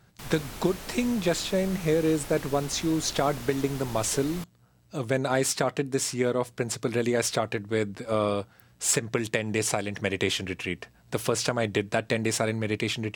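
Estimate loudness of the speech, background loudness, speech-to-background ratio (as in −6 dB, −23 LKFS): −27.5 LKFS, −40.5 LKFS, 13.0 dB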